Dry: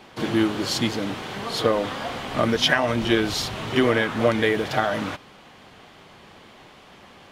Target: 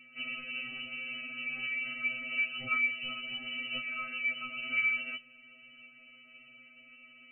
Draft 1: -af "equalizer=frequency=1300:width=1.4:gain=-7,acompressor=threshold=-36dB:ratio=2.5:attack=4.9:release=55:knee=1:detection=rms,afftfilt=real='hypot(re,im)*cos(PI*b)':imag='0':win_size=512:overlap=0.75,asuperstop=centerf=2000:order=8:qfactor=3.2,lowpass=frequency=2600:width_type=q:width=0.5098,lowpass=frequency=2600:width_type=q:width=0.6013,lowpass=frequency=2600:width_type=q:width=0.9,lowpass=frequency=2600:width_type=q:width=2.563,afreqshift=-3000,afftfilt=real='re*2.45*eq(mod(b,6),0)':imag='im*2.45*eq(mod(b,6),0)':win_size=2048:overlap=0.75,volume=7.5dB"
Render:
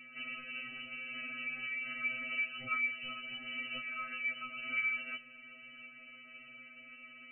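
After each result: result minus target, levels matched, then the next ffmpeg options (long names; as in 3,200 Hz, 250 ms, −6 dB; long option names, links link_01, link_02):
downward compressor: peak gain reduction +6.5 dB; 1,000 Hz band +3.5 dB
-af "equalizer=frequency=1300:width=1.4:gain=-7,acompressor=threshold=-26.5dB:ratio=2.5:attack=4.9:release=55:knee=1:detection=rms,afftfilt=real='hypot(re,im)*cos(PI*b)':imag='0':win_size=512:overlap=0.75,asuperstop=centerf=2000:order=8:qfactor=3.2,lowpass=frequency=2600:width_type=q:width=0.5098,lowpass=frequency=2600:width_type=q:width=0.6013,lowpass=frequency=2600:width_type=q:width=0.9,lowpass=frequency=2600:width_type=q:width=2.563,afreqshift=-3000,afftfilt=real='re*2.45*eq(mod(b,6),0)':imag='im*2.45*eq(mod(b,6),0)':win_size=2048:overlap=0.75,volume=7.5dB"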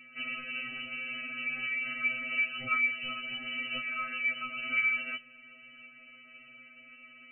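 1,000 Hz band +3.0 dB
-af "equalizer=frequency=1300:width=1.4:gain=-17.5,acompressor=threshold=-26.5dB:ratio=2.5:attack=4.9:release=55:knee=1:detection=rms,afftfilt=real='hypot(re,im)*cos(PI*b)':imag='0':win_size=512:overlap=0.75,asuperstop=centerf=2000:order=8:qfactor=3.2,lowpass=frequency=2600:width_type=q:width=0.5098,lowpass=frequency=2600:width_type=q:width=0.6013,lowpass=frequency=2600:width_type=q:width=0.9,lowpass=frequency=2600:width_type=q:width=2.563,afreqshift=-3000,afftfilt=real='re*2.45*eq(mod(b,6),0)':imag='im*2.45*eq(mod(b,6),0)':win_size=2048:overlap=0.75,volume=7.5dB"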